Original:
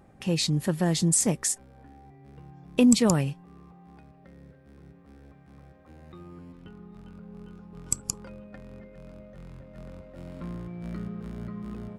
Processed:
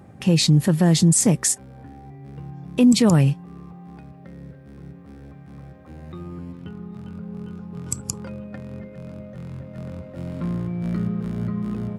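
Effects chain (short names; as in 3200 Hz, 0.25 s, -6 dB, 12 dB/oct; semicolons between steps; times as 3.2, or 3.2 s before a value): HPF 86 Hz 24 dB/oct; low shelf 160 Hz +10.5 dB; maximiser +13.5 dB; gain -7 dB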